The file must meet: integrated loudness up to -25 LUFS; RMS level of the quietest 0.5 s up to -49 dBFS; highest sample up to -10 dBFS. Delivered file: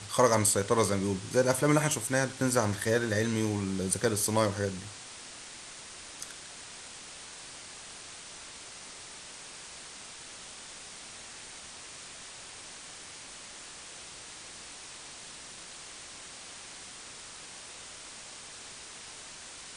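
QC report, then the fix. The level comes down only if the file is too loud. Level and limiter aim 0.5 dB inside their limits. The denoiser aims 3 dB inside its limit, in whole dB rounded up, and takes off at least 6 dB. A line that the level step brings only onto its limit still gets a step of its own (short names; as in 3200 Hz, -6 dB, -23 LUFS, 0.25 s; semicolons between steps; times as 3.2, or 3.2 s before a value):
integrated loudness -32.0 LUFS: OK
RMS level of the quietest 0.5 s -46 dBFS: fail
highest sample -9.0 dBFS: fail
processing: denoiser 6 dB, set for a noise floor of -46 dBFS; limiter -10.5 dBFS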